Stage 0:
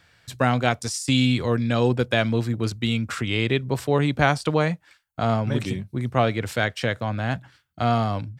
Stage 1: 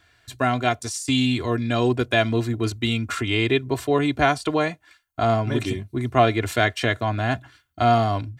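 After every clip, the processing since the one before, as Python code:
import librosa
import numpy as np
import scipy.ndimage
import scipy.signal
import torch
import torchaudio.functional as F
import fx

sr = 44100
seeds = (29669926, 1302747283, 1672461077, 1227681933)

y = fx.notch(x, sr, hz=5100.0, q=12.0)
y = y + 0.68 * np.pad(y, (int(2.9 * sr / 1000.0), 0))[:len(y)]
y = fx.rider(y, sr, range_db=10, speed_s=2.0)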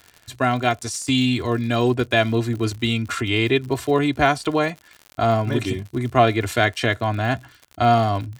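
y = fx.dmg_crackle(x, sr, seeds[0], per_s=79.0, level_db=-32.0)
y = y * 10.0 ** (1.5 / 20.0)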